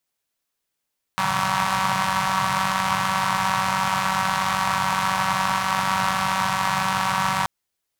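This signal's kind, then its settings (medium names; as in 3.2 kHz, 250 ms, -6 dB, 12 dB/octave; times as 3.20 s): four-cylinder engine model, steady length 6.28 s, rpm 5700, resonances 140/1000 Hz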